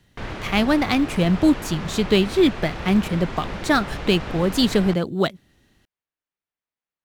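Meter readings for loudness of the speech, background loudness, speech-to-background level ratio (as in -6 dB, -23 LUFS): -21.0 LUFS, -33.0 LUFS, 12.0 dB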